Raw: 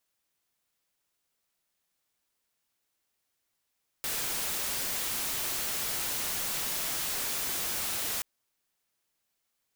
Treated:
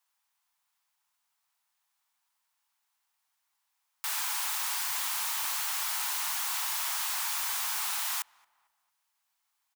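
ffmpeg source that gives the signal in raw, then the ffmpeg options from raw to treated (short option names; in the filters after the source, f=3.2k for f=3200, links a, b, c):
-f lavfi -i "anoisesrc=c=white:a=0.0411:d=4.18:r=44100:seed=1"
-filter_complex "[0:a]lowshelf=f=630:t=q:w=3:g=-12.5,acrossover=split=550[a][b];[a]aeval=exprs='(mod(1000*val(0)+1,2)-1)/1000':c=same[c];[c][b]amix=inputs=2:normalize=0,asplit=2[d][e];[e]adelay=225,lowpass=f=1.6k:p=1,volume=-23.5dB,asplit=2[f][g];[g]adelay=225,lowpass=f=1.6k:p=1,volume=0.51,asplit=2[h][i];[i]adelay=225,lowpass=f=1.6k:p=1,volume=0.51[j];[d][f][h][j]amix=inputs=4:normalize=0"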